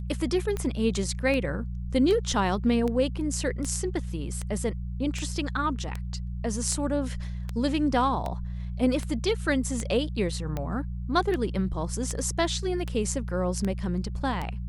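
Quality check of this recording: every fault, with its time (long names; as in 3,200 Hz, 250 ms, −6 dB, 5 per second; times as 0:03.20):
mains hum 60 Hz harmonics 3 −33 dBFS
scratch tick 78 rpm −18 dBFS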